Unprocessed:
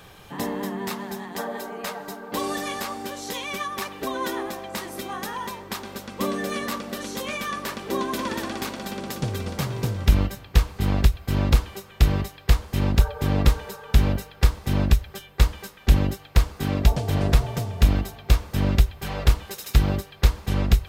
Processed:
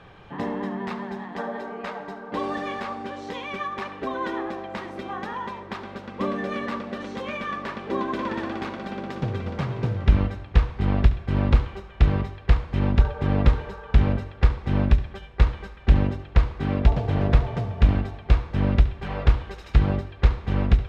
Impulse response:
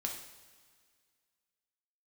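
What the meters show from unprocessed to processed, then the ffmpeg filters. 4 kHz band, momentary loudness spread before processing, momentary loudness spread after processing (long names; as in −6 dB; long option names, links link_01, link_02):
−7.5 dB, 10 LU, 12 LU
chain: -filter_complex "[0:a]lowpass=2400,asplit=2[link_01][link_02];[1:a]atrim=start_sample=2205,adelay=70[link_03];[link_02][link_03]afir=irnorm=-1:irlink=0,volume=-13.5dB[link_04];[link_01][link_04]amix=inputs=2:normalize=0"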